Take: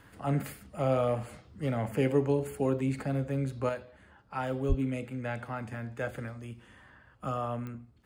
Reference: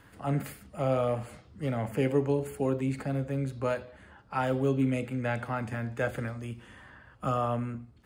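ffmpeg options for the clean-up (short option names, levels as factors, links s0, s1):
-filter_complex "[0:a]adeclick=t=4,asplit=3[s0][s1][s2];[s0]afade=t=out:st=4.68:d=0.02[s3];[s1]highpass=f=140:w=0.5412,highpass=f=140:w=1.3066,afade=t=in:st=4.68:d=0.02,afade=t=out:st=4.8:d=0.02[s4];[s2]afade=t=in:st=4.8:d=0.02[s5];[s3][s4][s5]amix=inputs=3:normalize=0,asetnsamples=n=441:p=0,asendcmd='3.69 volume volume 4.5dB',volume=1"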